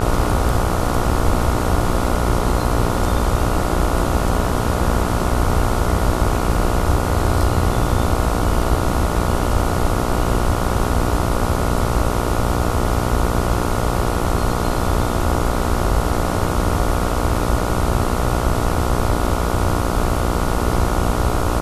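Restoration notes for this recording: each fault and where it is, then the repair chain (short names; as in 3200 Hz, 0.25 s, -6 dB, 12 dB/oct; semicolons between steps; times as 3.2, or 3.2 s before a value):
buzz 60 Hz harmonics 24 -22 dBFS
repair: de-hum 60 Hz, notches 24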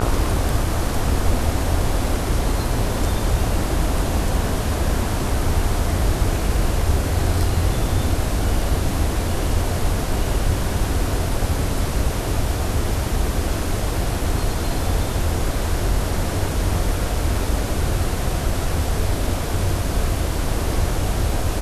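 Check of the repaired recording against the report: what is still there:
none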